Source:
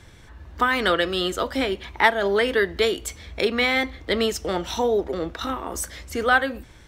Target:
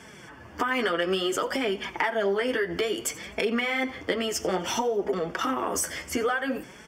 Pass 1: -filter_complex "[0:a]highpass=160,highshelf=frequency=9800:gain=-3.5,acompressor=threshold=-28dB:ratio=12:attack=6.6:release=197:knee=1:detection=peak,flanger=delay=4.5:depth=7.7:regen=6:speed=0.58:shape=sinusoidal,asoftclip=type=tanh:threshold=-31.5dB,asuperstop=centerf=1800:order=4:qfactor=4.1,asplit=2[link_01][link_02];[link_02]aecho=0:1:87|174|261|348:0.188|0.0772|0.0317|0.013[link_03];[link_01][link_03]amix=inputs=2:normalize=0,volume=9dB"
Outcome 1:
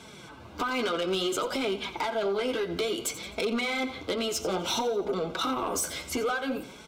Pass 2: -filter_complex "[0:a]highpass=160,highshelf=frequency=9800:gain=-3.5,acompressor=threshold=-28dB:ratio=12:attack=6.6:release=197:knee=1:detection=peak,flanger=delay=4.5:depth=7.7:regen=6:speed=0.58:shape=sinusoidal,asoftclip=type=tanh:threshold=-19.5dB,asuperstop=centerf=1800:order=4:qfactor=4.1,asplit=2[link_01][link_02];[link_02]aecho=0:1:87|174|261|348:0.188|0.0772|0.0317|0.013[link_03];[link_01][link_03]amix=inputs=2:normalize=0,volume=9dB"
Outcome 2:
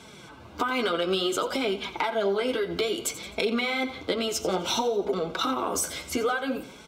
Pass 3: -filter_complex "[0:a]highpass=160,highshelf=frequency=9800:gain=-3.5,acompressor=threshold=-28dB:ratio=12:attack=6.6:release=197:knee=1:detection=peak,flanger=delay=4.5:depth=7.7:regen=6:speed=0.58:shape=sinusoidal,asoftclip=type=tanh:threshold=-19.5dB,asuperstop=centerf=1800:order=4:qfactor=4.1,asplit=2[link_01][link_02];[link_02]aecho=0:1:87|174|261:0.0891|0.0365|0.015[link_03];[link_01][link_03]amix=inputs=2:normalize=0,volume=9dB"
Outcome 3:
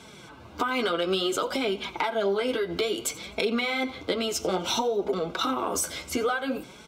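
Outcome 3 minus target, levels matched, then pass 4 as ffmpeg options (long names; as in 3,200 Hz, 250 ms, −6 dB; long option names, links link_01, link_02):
2,000 Hz band −3.0 dB
-filter_complex "[0:a]highpass=160,highshelf=frequency=9800:gain=-3.5,acompressor=threshold=-28dB:ratio=12:attack=6.6:release=197:knee=1:detection=peak,flanger=delay=4.5:depth=7.7:regen=6:speed=0.58:shape=sinusoidal,asoftclip=type=tanh:threshold=-19.5dB,asuperstop=centerf=3900:order=4:qfactor=4.1,asplit=2[link_01][link_02];[link_02]aecho=0:1:87|174|261:0.0891|0.0365|0.015[link_03];[link_01][link_03]amix=inputs=2:normalize=0,volume=9dB"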